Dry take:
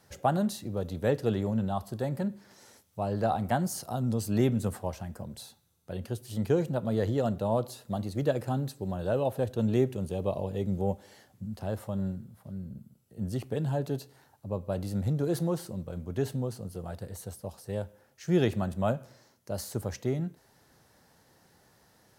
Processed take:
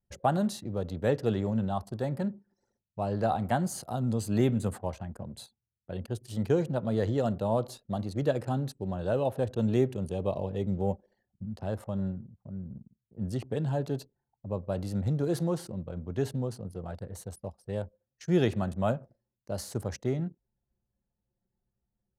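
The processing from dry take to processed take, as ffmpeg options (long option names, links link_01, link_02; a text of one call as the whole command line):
ffmpeg -i in.wav -filter_complex "[0:a]asettb=1/sr,asplit=3[link_01][link_02][link_03];[link_01]atrim=end=3.254[link_04];[link_02]atrim=start=3.25:end=6.15,asetpts=PTS-STARTPTS,afade=type=in:duration=0.004:curve=qsin,afade=type=out:start_time=2.896:duration=0.004:curve=qsin,bandreject=frequency=5500:width=6.6[link_05];[link_03]atrim=start=6.146[link_06];[link_04][link_05]acrossfade=duration=0.004:curve1=hsin:curve2=qsin[link_07];[link_07][link_06]acrossfade=duration=0.004:curve1=qsin:curve2=hsin,anlmdn=0.0158,lowpass=11000" out.wav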